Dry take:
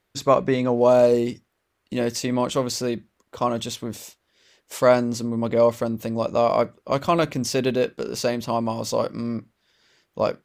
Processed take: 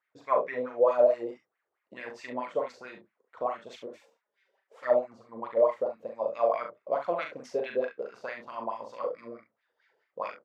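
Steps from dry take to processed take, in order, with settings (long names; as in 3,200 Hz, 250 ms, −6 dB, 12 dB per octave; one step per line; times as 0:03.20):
0:03.86–0:05.29: flanger swept by the level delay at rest 5.3 ms, full sweep at −13.5 dBFS
LFO wah 4.6 Hz 470–2,200 Hz, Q 5.2
ambience of single reflections 40 ms −5 dB, 68 ms −10 dB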